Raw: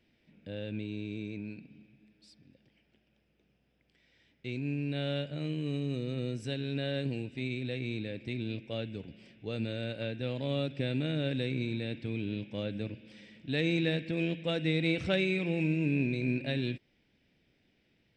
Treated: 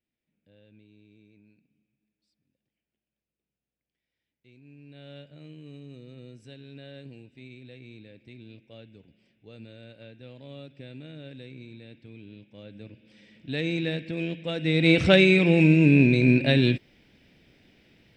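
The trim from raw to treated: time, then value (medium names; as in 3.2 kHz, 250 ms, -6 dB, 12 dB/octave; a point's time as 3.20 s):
4.60 s -19 dB
5.18 s -11 dB
12.54 s -11 dB
13.46 s +1 dB
14.55 s +1 dB
14.95 s +12 dB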